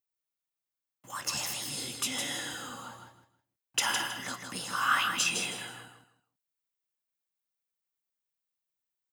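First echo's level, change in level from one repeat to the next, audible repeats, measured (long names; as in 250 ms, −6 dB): −6.0 dB, −12.5 dB, 3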